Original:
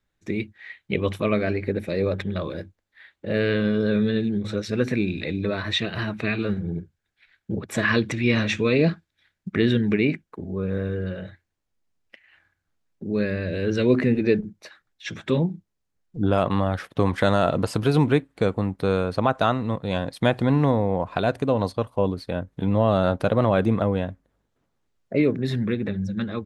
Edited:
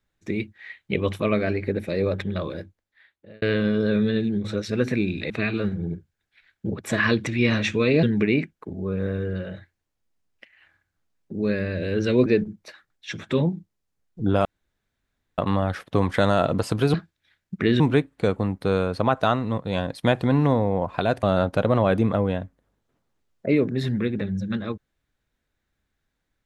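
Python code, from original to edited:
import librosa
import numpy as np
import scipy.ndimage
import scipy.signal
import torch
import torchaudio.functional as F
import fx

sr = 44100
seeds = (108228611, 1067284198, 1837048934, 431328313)

y = fx.edit(x, sr, fx.fade_out_span(start_s=2.46, length_s=0.96),
    fx.cut(start_s=5.3, length_s=0.85),
    fx.move(start_s=8.88, length_s=0.86, to_s=17.98),
    fx.cut(start_s=13.97, length_s=0.26),
    fx.insert_room_tone(at_s=16.42, length_s=0.93),
    fx.cut(start_s=21.41, length_s=1.49), tone=tone)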